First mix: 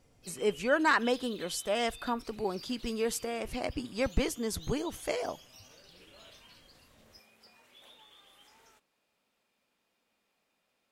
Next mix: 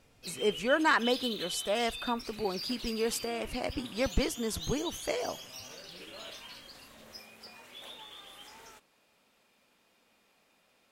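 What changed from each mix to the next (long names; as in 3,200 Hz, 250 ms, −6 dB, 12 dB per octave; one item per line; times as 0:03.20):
background +9.5 dB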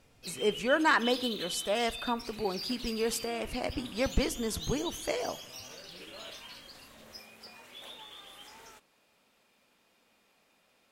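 reverb: on, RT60 0.95 s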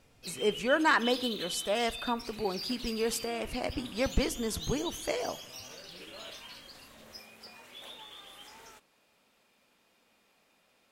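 nothing changed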